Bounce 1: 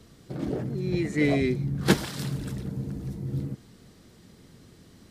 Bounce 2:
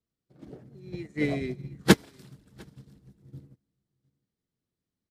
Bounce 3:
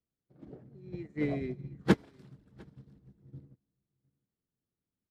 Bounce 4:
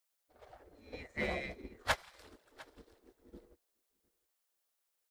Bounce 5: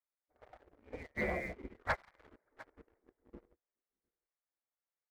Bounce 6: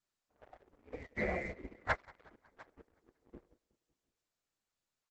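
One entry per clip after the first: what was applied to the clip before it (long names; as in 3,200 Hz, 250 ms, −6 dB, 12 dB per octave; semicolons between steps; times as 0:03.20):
multi-tap delay 182/704 ms −18.5/−12 dB; expander for the loud parts 2.5 to 1, over −42 dBFS; level +4.5 dB
low-pass filter 1,500 Hz 6 dB per octave; in parallel at −7 dB: gain into a clipping stage and back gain 23 dB; on the sum: level −6.5 dB
gate on every frequency bin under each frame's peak −15 dB weak; high-shelf EQ 6,200 Hz +6.5 dB; in parallel at −1 dB: compressor whose output falls as the input rises −42 dBFS; on the sum: level +1 dB
Butterworth low-pass 2,300 Hz 96 dB per octave; leveller curve on the samples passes 2; level −6 dB
repeating echo 184 ms, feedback 59%, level −23.5 dB; level +1 dB; Opus 12 kbit/s 48,000 Hz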